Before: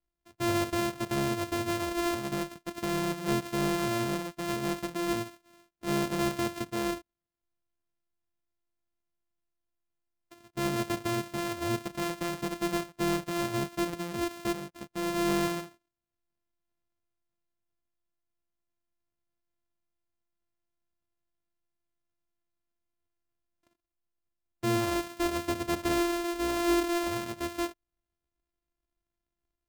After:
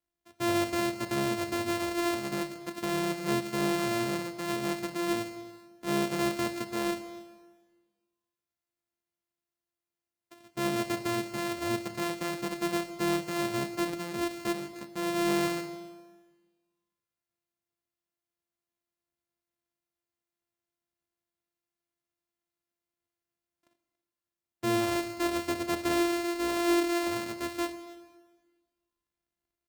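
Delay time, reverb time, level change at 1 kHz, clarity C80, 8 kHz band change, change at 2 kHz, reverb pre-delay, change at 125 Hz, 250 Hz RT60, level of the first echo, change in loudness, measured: 0.282 s, 1.5 s, 0.0 dB, 13.0 dB, 0.0 dB, +1.0 dB, 11 ms, -3.0 dB, 1.5 s, -21.0 dB, +0.5 dB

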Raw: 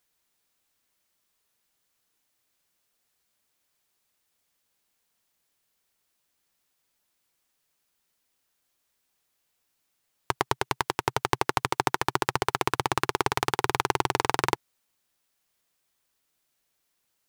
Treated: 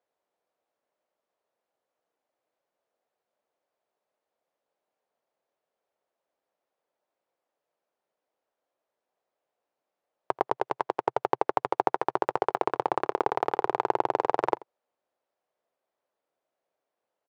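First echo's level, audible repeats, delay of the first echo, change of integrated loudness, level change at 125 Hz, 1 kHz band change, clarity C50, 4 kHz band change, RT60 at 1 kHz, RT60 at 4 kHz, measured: -22.0 dB, 1, 85 ms, -1.0 dB, -12.5 dB, +0.5 dB, none, -15.0 dB, none, none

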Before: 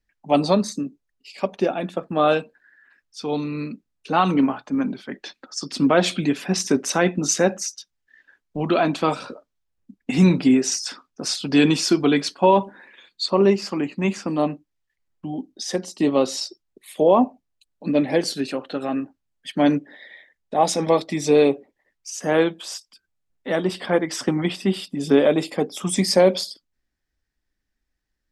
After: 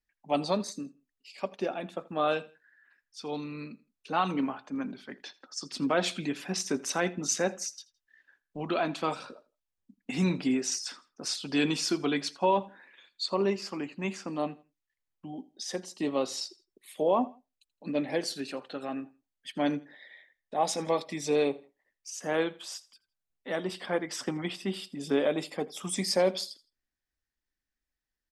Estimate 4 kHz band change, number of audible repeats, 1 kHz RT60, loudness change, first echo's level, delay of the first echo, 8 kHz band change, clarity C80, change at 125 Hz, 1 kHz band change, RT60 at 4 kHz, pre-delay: -7.5 dB, 2, none, -10.0 dB, -21.0 dB, 82 ms, -7.5 dB, none, -12.5 dB, -9.0 dB, none, none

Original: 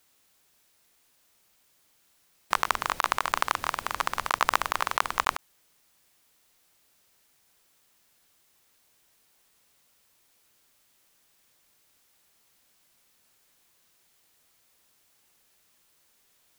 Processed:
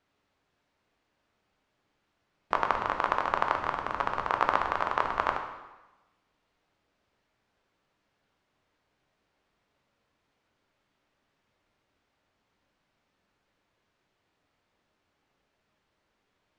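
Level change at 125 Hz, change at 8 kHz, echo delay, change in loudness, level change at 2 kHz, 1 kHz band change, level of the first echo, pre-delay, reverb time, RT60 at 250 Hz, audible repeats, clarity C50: +2.0 dB, under -20 dB, none, -1.5 dB, -3.5 dB, 0.0 dB, none, 5 ms, 1.1 s, 1.1 s, none, 7.0 dB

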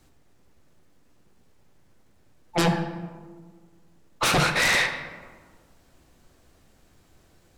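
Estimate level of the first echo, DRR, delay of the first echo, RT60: none, 5.5 dB, none, 1.6 s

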